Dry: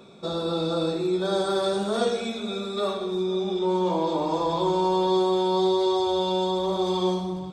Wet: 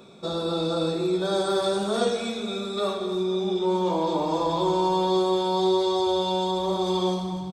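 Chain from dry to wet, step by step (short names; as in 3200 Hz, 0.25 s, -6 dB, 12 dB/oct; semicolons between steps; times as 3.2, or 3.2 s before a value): high shelf 7400 Hz +4.5 dB; echo 0.26 s -12.5 dB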